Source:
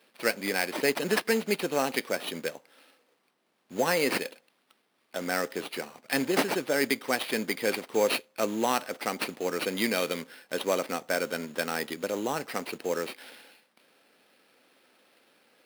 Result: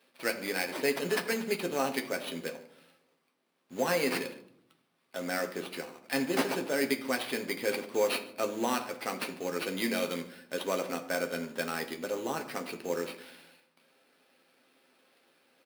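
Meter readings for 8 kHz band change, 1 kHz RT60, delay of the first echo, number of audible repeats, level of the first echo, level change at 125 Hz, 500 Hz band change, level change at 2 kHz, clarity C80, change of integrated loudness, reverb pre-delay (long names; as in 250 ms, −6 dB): −4.0 dB, 0.60 s, 145 ms, 1, −21.5 dB, −2.5 dB, −3.0 dB, −3.5 dB, 14.0 dB, −3.0 dB, 7 ms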